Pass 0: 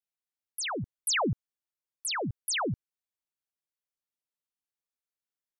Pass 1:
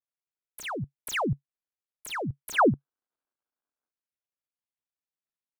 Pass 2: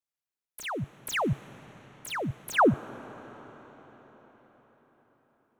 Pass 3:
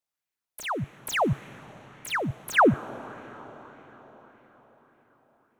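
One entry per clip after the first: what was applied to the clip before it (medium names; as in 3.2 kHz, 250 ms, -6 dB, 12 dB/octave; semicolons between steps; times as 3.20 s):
median filter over 9 samples; time-frequency box 2.54–3.91 s, 210–1700 Hz +11 dB; dynamic bell 140 Hz, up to +5 dB, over -49 dBFS, Q 4.8
reverberation RT60 5.3 s, pre-delay 30 ms, DRR 17 dB
sweeping bell 1.7 Hz 640–2300 Hz +6 dB; trim +2 dB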